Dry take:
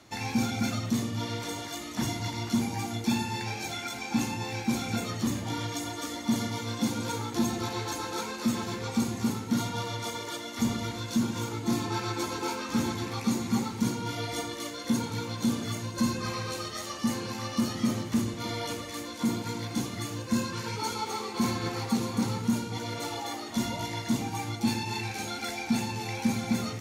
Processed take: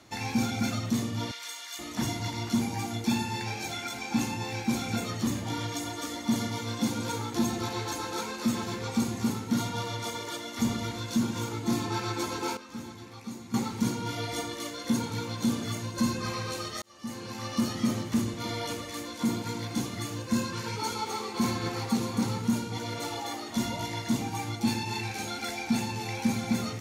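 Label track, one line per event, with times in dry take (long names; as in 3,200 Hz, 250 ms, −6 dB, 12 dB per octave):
1.310000	1.790000	high-pass filter 1,500 Hz
12.570000	13.540000	clip gain −12 dB
16.820000	17.550000	fade in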